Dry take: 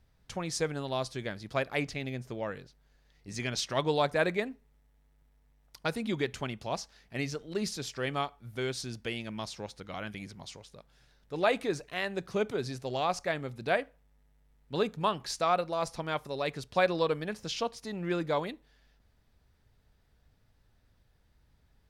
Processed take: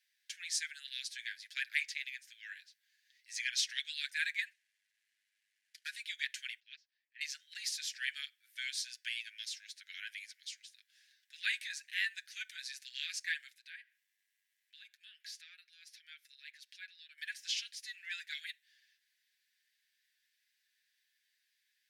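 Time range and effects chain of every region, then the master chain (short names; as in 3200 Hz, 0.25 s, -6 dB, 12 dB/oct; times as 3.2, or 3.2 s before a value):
4.51–5.96 CVSD 64 kbps + high shelf 3900 Hz -9 dB
6.6–7.21 HPF 480 Hz 24 dB/oct + air absorption 220 m + upward expander 2.5:1, over -45 dBFS
13.55–17.18 dynamic EQ 8000 Hz, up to -7 dB, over -58 dBFS, Q 1.4 + compressor 2:1, threshold -52 dBFS
whole clip: steep high-pass 1600 Hz 96 dB/oct; comb 7.3 ms, depth 48%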